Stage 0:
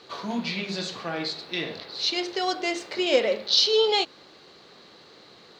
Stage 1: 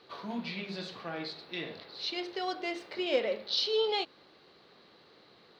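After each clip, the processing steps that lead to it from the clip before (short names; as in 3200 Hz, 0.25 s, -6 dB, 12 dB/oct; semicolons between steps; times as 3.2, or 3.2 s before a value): bell 7000 Hz -13 dB 0.69 oct; gain -7.5 dB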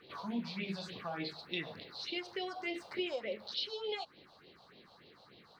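compressor 4:1, threshold -35 dBFS, peak gain reduction 10.5 dB; phaser stages 4, 3.4 Hz, lowest notch 310–1400 Hz; gain +3 dB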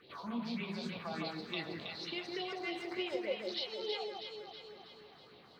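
echo with dull and thin repeats by turns 0.161 s, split 1800 Hz, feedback 73%, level -2 dB; gain -2 dB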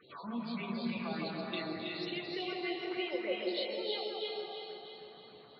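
loudest bins only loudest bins 64; reverb RT60 1.6 s, pre-delay 0.254 s, DRR 1 dB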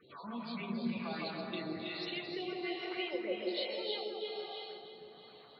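harmonic tremolo 1.2 Hz, depth 50%, crossover 500 Hz; gain +1 dB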